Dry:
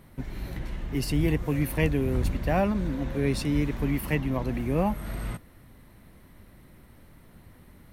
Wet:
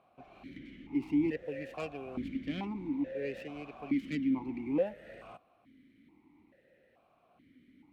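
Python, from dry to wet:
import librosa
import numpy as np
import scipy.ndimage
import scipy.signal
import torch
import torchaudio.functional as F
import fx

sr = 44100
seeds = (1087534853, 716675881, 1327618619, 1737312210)

y = fx.tracing_dist(x, sr, depth_ms=0.29)
y = fx.vowel_held(y, sr, hz=2.3)
y = y * 10.0 ** (3.0 / 20.0)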